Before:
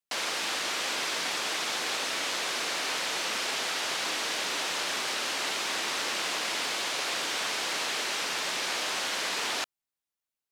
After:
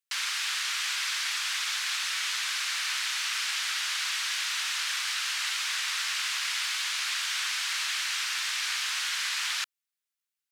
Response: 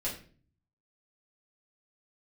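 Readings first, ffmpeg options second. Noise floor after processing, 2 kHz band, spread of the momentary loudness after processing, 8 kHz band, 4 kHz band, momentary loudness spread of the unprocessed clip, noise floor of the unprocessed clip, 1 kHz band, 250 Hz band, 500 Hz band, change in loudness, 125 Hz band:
below −85 dBFS, +1.0 dB, 0 LU, +1.5 dB, +1.5 dB, 0 LU, below −85 dBFS, −5.0 dB, below −40 dB, below −25 dB, +1.0 dB, below −40 dB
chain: -af "highpass=frequency=1300:width=0.5412,highpass=frequency=1300:width=1.3066,volume=1.5dB"

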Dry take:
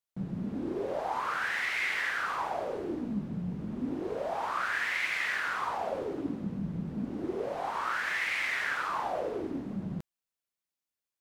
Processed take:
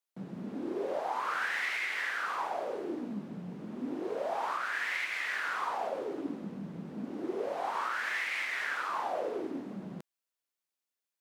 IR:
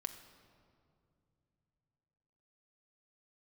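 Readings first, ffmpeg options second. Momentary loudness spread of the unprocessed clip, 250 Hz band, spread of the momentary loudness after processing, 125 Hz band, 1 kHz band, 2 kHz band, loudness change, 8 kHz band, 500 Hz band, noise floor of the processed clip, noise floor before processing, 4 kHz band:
7 LU, −3.5 dB, 10 LU, −8.5 dB, −1.0 dB, −2.5 dB, −2.0 dB, −2.0 dB, −1.0 dB, below −85 dBFS, below −85 dBFS, −2.5 dB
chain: -af "highpass=260,alimiter=limit=-23.5dB:level=0:latency=1:release=444"

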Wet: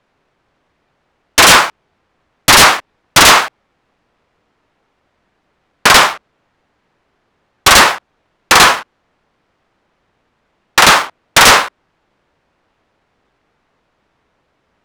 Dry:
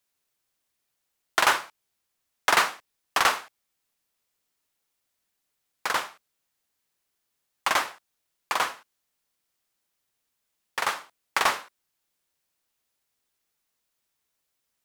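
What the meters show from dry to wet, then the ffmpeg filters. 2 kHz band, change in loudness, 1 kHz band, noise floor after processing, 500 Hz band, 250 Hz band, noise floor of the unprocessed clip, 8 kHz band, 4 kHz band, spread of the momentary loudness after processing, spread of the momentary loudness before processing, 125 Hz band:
+17.5 dB, +18.0 dB, +16.5 dB, −65 dBFS, +18.0 dB, +23.0 dB, −80 dBFS, +22.5 dB, +21.5 dB, 13 LU, 13 LU, +28.0 dB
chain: -af "aeval=exprs='(mod(8.41*val(0)+1,2)-1)/8.41':channel_layout=same,apsyclip=29.5dB,adynamicsmooth=sensitivity=3.5:basefreq=1500,volume=-1.5dB"

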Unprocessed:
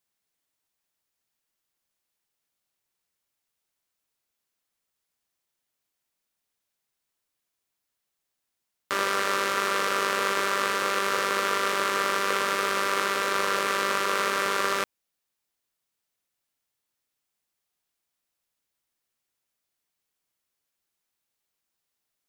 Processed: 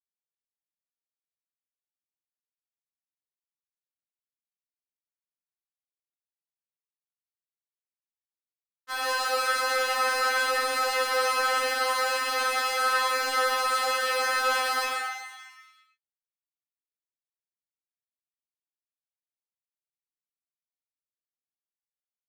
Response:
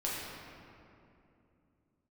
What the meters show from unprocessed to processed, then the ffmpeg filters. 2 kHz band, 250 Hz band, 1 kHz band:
+0.5 dB, −12.0 dB, 0.0 dB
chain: -filter_complex "[0:a]equalizer=frequency=150:width_type=o:width=2.1:gain=-5.5,acrossover=split=240|720|7900[link_01][link_02][link_03][link_04];[link_01]alimiter=level_in=27.5dB:limit=-24dB:level=0:latency=1,volume=-27.5dB[link_05];[link_05][link_02][link_03][link_04]amix=inputs=4:normalize=0,acrusher=bits=6:mix=0:aa=0.5,asplit=2[link_06][link_07];[link_07]adelay=14,volume=-8dB[link_08];[link_06][link_08]amix=inputs=2:normalize=0,asplit=9[link_09][link_10][link_11][link_12][link_13][link_14][link_15][link_16][link_17];[link_10]adelay=117,afreqshift=100,volume=-7.5dB[link_18];[link_11]adelay=234,afreqshift=200,volume=-11.8dB[link_19];[link_12]adelay=351,afreqshift=300,volume=-16.1dB[link_20];[link_13]adelay=468,afreqshift=400,volume=-20.4dB[link_21];[link_14]adelay=585,afreqshift=500,volume=-24.7dB[link_22];[link_15]adelay=702,afreqshift=600,volume=-29dB[link_23];[link_16]adelay=819,afreqshift=700,volume=-33.3dB[link_24];[link_17]adelay=936,afreqshift=800,volume=-37.6dB[link_25];[link_09][link_18][link_19][link_20][link_21][link_22][link_23][link_24][link_25]amix=inputs=9:normalize=0[link_26];[1:a]atrim=start_sample=2205,afade=type=out:start_time=0.23:duration=0.01,atrim=end_sample=10584[link_27];[link_26][link_27]afir=irnorm=-1:irlink=0,afftfilt=real='re*3.46*eq(mod(b,12),0)':imag='im*3.46*eq(mod(b,12),0)':win_size=2048:overlap=0.75"

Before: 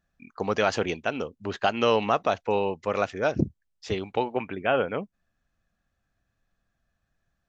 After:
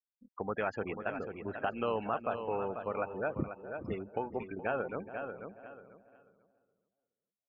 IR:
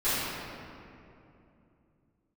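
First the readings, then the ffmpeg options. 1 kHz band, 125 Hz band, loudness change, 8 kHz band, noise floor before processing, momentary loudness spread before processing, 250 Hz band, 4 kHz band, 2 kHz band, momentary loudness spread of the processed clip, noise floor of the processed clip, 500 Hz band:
−9.0 dB, −9.5 dB, −10.0 dB, can't be measured, −78 dBFS, 10 LU, −9.0 dB, below −20 dB, −9.0 dB, 10 LU, below −85 dBFS, −9.5 dB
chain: -filter_complex "[0:a]afftfilt=real='re*gte(hypot(re,im),0.0398)':imag='im*gte(hypot(re,im),0.0398)':win_size=1024:overlap=0.75,asplit=2[link_01][link_02];[link_02]aecho=0:1:490|980|1470:0.316|0.0632|0.0126[link_03];[link_01][link_03]amix=inputs=2:normalize=0,tremolo=f=270:d=0.261,highshelf=frequency=2800:width_type=q:width=1.5:gain=-11,acompressor=threshold=-37dB:ratio=1.5,asplit=2[link_04][link_05];[link_05]adelay=421,lowpass=frequency=1000:poles=1,volume=-13dB,asplit=2[link_06][link_07];[link_07]adelay=421,lowpass=frequency=1000:poles=1,volume=0.29,asplit=2[link_08][link_09];[link_09]adelay=421,lowpass=frequency=1000:poles=1,volume=0.29[link_10];[link_06][link_08][link_10]amix=inputs=3:normalize=0[link_11];[link_04][link_11]amix=inputs=2:normalize=0,volume=-3.5dB"

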